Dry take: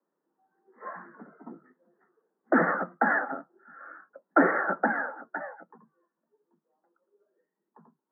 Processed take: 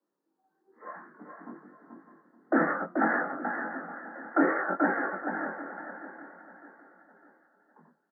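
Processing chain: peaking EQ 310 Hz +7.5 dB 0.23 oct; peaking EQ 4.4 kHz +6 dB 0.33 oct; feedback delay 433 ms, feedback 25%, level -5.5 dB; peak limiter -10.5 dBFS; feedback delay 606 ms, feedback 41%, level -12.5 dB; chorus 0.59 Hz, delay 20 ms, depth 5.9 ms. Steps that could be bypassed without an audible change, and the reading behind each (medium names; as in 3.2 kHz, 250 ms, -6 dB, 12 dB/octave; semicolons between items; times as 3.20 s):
peaking EQ 4.4 kHz: input has nothing above 2 kHz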